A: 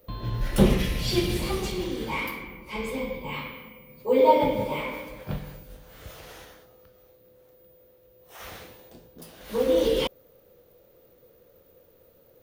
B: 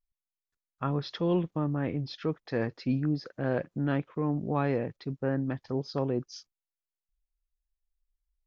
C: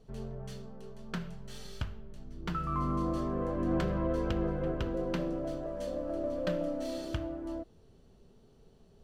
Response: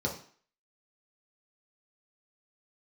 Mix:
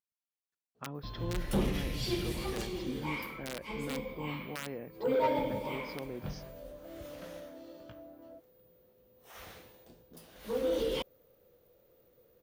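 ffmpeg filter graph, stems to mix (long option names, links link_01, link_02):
-filter_complex "[0:a]asoftclip=type=tanh:threshold=-14dB,adelay=950,volume=-8dB[link_01];[1:a]aeval=exprs='(mod(7.08*val(0)+1,2)-1)/7.08':channel_layout=same,volume=-5dB,asplit=2[link_02][link_03];[2:a]lowpass=frequency=2500:poles=1,flanger=delay=16.5:depth=6.6:speed=0.27,adelay=750,volume=-6.5dB[link_04];[link_03]apad=whole_len=431358[link_05];[link_04][link_05]sidechaincompress=threshold=-52dB:ratio=8:attack=16:release=133[link_06];[link_02][link_06]amix=inputs=2:normalize=0,highpass=150,acompressor=threshold=-49dB:ratio=1.5,volume=0dB[link_07];[link_01][link_07]amix=inputs=2:normalize=0"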